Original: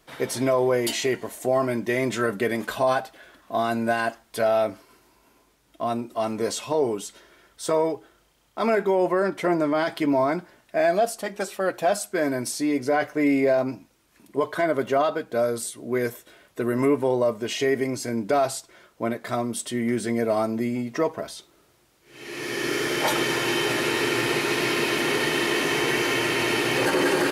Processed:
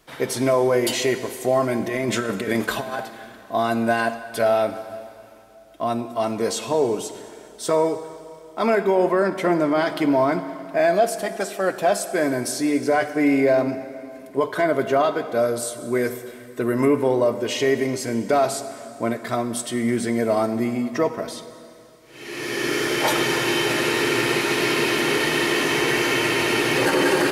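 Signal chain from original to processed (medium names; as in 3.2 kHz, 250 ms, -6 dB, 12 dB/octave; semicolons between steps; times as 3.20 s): 1.80–2.99 s: compressor with a negative ratio -26 dBFS, ratio -0.5; reverberation RT60 2.7 s, pre-delay 38 ms, DRR 11 dB; trim +2.5 dB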